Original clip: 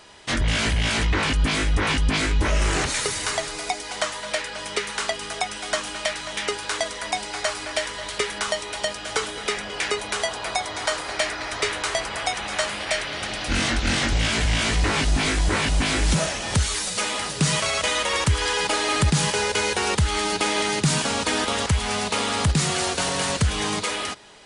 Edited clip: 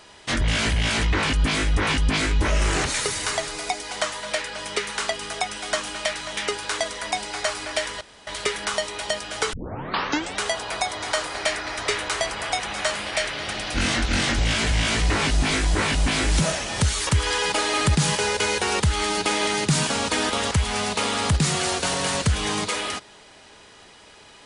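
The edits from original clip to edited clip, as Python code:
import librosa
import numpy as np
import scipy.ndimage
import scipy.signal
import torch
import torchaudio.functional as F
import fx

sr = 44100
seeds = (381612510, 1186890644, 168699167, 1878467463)

y = fx.edit(x, sr, fx.insert_room_tone(at_s=8.01, length_s=0.26),
    fx.tape_start(start_s=9.27, length_s=0.87),
    fx.cut(start_s=16.81, length_s=1.41), tone=tone)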